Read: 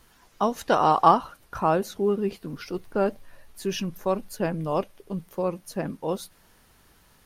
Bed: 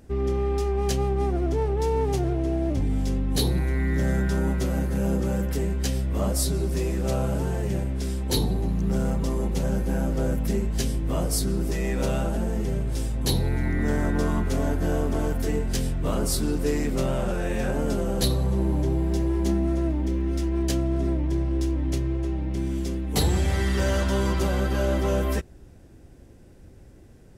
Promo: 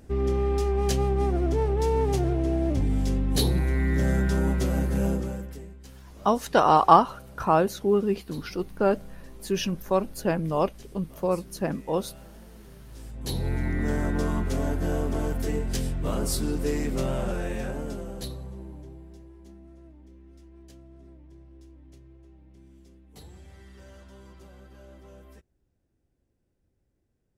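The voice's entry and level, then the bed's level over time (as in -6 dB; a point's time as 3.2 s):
5.85 s, +1.5 dB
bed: 5.05 s 0 dB
5.85 s -22 dB
12.77 s -22 dB
13.49 s -2.5 dB
17.36 s -2.5 dB
19.36 s -25.5 dB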